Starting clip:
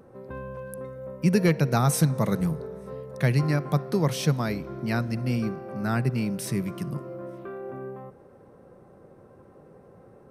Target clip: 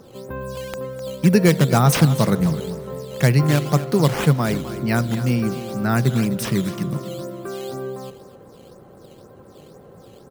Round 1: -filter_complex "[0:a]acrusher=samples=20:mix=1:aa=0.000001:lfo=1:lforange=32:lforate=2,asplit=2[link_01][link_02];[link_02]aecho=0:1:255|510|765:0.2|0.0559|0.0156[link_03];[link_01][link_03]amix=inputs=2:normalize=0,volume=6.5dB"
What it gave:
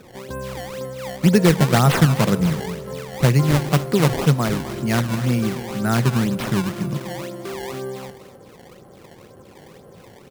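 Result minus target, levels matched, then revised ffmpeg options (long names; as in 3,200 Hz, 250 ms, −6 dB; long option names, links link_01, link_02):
sample-and-hold swept by an LFO: distortion +6 dB
-filter_complex "[0:a]acrusher=samples=7:mix=1:aa=0.000001:lfo=1:lforange=11.2:lforate=2,asplit=2[link_01][link_02];[link_02]aecho=0:1:255|510|765:0.2|0.0559|0.0156[link_03];[link_01][link_03]amix=inputs=2:normalize=0,volume=6.5dB"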